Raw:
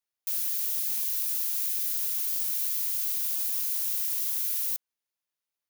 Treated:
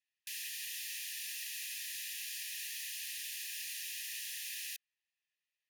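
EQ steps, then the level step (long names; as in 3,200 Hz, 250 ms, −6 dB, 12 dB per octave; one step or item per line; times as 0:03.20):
formant filter e
linear-phase brick-wall band-stop 220–1,600 Hz
high-shelf EQ 2,300 Hz +12 dB
+10.5 dB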